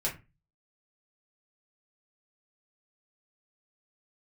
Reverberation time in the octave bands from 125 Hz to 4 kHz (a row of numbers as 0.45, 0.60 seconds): 0.50, 0.35, 0.30, 0.25, 0.25, 0.20 seconds